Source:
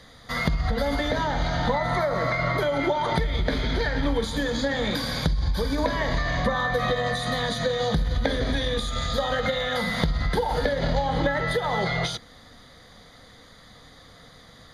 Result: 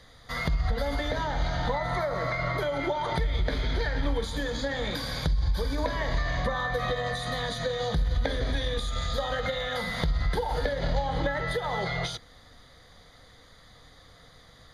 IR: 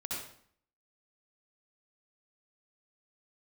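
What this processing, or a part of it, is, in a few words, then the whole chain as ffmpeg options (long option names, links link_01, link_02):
low shelf boost with a cut just above: -af "lowshelf=frequency=78:gain=5.5,equalizer=frequency=220:width_type=o:width=0.71:gain=-5.5,volume=-4.5dB"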